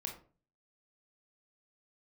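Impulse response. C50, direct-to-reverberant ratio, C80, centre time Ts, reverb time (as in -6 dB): 8.0 dB, 1.5 dB, 13.0 dB, 20 ms, 0.40 s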